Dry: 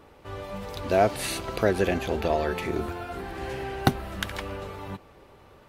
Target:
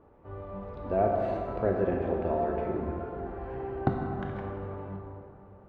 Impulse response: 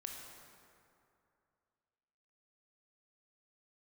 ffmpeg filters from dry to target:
-filter_complex "[0:a]lowpass=1000[s0];[1:a]atrim=start_sample=2205[s1];[s0][s1]afir=irnorm=-1:irlink=0"

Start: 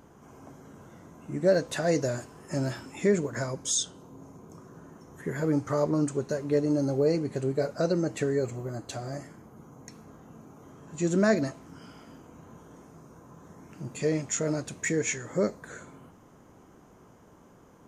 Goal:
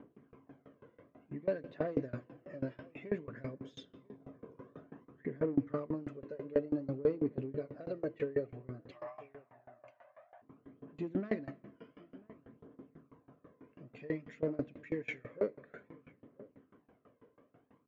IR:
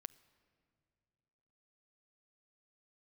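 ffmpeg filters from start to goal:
-filter_complex "[0:a]asettb=1/sr,asplit=3[s0][s1][s2];[s0]atrim=end=4.204[s3];[s1]atrim=start=4.2:end=5.05,asetpts=PTS-STARTPTS,afade=t=in:d=0.004:c=qsin,afade=t=out:st=0.846:d=0.004:c=qsin,acontrast=57[s4];[s2]atrim=start=5.046[s5];[s3][s4]acrossfade=d=0.004:c1=hsin:c2=qsin[s6];[s6][s5]acrossfade=d=0.004:c1=qsin:c2=hsin,asettb=1/sr,asplit=3[s7][s8][s9];[s7]atrim=end=8.914[s10];[s8]atrim=start=8.91:end=10.42,asetpts=PTS-STARTPTS,afade=t=in:d=0.004:c=qsin,afade=t=out:st=1.506:d=0.004:c=qsin,afreqshift=480[s11];[s9]atrim=start=10.416[s12];[s10][s11]acrossfade=d=0.004:c1=hsin:c2=qsin[s13];[s13][s12]acrossfade=d=0.004:c1=qsin:c2=hsin,aphaser=in_gain=1:out_gain=1:delay=2.1:decay=0.49:speed=0.55:type=triangular,asoftclip=type=tanh:threshold=0.126,highpass=130,equalizer=f=170:t=q:w=4:g=-6,equalizer=f=260:t=q:w=4:g=6,equalizer=f=460:t=q:w=4:g=4,equalizer=f=860:t=q:w=4:g=-9,equalizer=f=1400:t=q:w=4:g=-5,lowpass=f=2800:w=0.5412,lowpass=f=2800:w=1.3066,asplit=2[s14][s15];[s15]adelay=991.3,volume=0.0891,highshelf=f=4000:g=-22.3[s16];[s14][s16]amix=inputs=2:normalize=0[s17];[1:a]atrim=start_sample=2205[s18];[s17][s18]afir=irnorm=-1:irlink=0,aeval=exprs='val(0)*pow(10,-24*if(lt(mod(6.1*n/s,1),2*abs(6.1)/1000),1-mod(6.1*n/s,1)/(2*abs(6.1)/1000),(mod(6.1*n/s,1)-2*abs(6.1)/1000)/(1-2*abs(6.1)/1000))/20)':c=same,volume=1.33"

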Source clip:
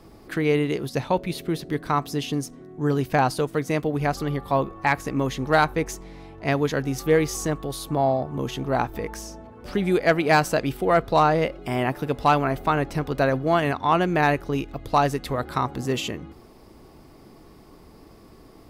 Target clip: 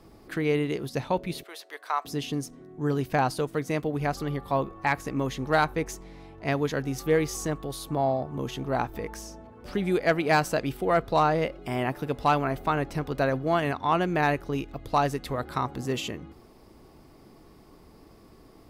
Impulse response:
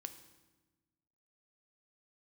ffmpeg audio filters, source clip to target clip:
-filter_complex "[0:a]asettb=1/sr,asplit=3[s0][s1][s2];[s0]atrim=end=1.434[s3];[s1]atrim=start=1.43:end=2.05,asetpts=PTS-STARTPTS,afade=t=in:d=0.004:c=qsin,afade=t=out:st=0.616:d=0.004:c=qsin,highpass=f=610:w=0.5412,highpass=f=610:w=1.3066[s4];[s2]atrim=start=2.046[s5];[s3][s4]acrossfade=d=0.004:c1=hsin:c2=qsin[s6];[s6][s5]acrossfade=d=0.004:c1=qsin:c2=hsin,volume=0.631"

